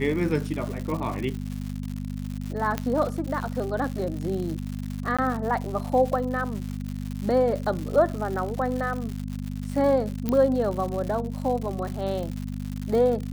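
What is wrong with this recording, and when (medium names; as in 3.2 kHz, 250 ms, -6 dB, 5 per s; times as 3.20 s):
crackle 180 per s -31 dBFS
hum 50 Hz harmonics 5 -32 dBFS
2.78 s: pop -12 dBFS
5.17–5.19 s: dropout 16 ms
10.29 s: pop -13 dBFS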